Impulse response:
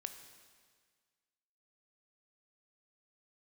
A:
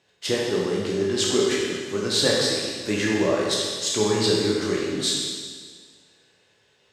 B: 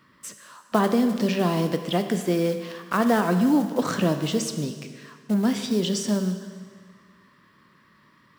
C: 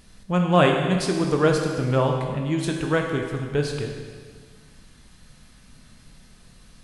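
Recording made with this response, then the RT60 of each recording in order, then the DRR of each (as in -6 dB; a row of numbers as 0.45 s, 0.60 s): B; 1.7 s, 1.7 s, 1.7 s; -4.5 dB, 7.5 dB, 1.5 dB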